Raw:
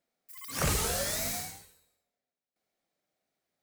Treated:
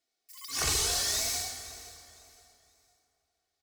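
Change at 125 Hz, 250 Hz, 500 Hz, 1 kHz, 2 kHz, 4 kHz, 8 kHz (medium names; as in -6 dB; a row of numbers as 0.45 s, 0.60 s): -6.5 dB, -8.0 dB, -5.0 dB, -1.5 dB, 0.0 dB, +6.5 dB, +4.0 dB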